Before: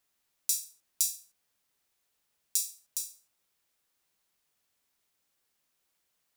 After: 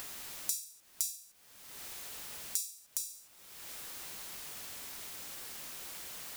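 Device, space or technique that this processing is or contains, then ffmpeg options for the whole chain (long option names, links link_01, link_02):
upward and downward compression: -af "acompressor=mode=upward:threshold=-30dB:ratio=2.5,acompressor=threshold=-41dB:ratio=3,volume=6.5dB"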